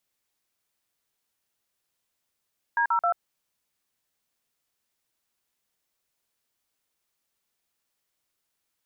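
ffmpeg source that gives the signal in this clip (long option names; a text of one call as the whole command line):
ffmpeg -f lavfi -i "aevalsrc='0.0708*clip(min(mod(t,0.133),0.088-mod(t,0.133))/0.002,0,1)*(eq(floor(t/0.133),0)*(sin(2*PI*941*mod(t,0.133))+sin(2*PI*1633*mod(t,0.133)))+eq(floor(t/0.133),1)*(sin(2*PI*941*mod(t,0.133))+sin(2*PI*1336*mod(t,0.133)))+eq(floor(t/0.133),2)*(sin(2*PI*697*mod(t,0.133))+sin(2*PI*1336*mod(t,0.133))))':duration=0.399:sample_rate=44100" out.wav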